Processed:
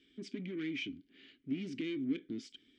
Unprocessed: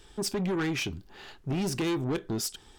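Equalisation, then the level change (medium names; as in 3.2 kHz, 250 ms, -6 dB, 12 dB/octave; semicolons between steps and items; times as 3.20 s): vowel filter i; low-pass 8 kHz 24 dB/octave; +2.5 dB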